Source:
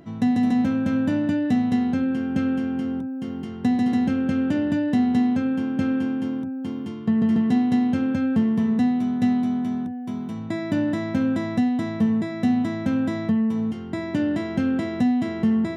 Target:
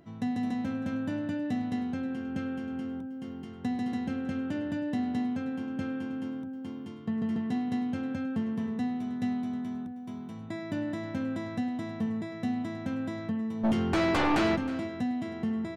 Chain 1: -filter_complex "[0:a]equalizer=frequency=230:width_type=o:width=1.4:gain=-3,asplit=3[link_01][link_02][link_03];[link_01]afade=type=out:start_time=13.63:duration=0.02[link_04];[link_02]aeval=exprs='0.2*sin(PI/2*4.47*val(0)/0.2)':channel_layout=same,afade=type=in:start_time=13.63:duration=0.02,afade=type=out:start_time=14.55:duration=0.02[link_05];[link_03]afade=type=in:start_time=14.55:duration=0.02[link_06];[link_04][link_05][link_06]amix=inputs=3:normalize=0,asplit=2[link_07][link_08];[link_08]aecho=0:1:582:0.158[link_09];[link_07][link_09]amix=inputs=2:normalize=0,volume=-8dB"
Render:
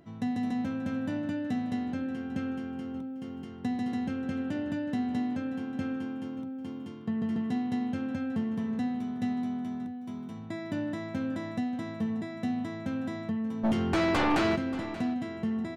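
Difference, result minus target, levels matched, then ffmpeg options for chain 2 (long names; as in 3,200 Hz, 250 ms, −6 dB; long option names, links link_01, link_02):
echo 266 ms late
-filter_complex "[0:a]equalizer=frequency=230:width_type=o:width=1.4:gain=-3,asplit=3[link_01][link_02][link_03];[link_01]afade=type=out:start_time=13.63:duration=0.02[link_04];[link_02]aeval=exprs='0.2*sin(PI/2*4.47*val(0)/0.2)':channel_layout=same,afade=type=in:start_time=13.63:duration=0.02,afade=type=out:start_time=14.55:duration=0.02[link_05];[link_03]afade=type=in:start_time=14.55:duration=0.02[link_06];[link_04][link_05][link_06]amix=inputs=3:normalize=0,asplit=2[link_07][link_08];[link_08]aecho=0:1:316:0.158[link_09];[link_07][link_09]amix=inputs=2:normalize=0,volume=-8dB"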